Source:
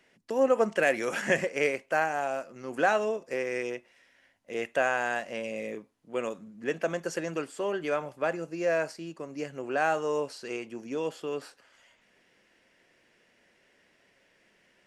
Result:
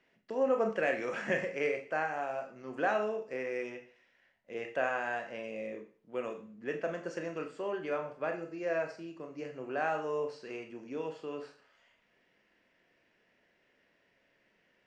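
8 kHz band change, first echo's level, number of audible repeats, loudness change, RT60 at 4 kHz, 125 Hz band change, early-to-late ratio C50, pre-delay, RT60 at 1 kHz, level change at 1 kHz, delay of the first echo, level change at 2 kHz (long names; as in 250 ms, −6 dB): below −10 dB, no echo audible, no echo audible, −5.5 dB, 0.45 s, −6.0 dB, 11.0 dB, 24 ms, 0.40 s, −5.5 dB, no echo audible, −6.0 dB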